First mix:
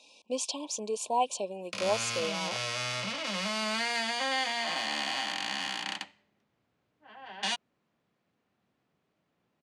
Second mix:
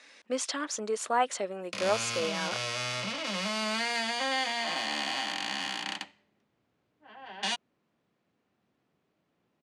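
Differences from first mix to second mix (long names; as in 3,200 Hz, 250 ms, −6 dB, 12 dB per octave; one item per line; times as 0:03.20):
speech: remove linear-phase brick-wall band-stop 1,100–2,300 Hz
master: add parametric band 330 Hz +3 dB 1.1 octaves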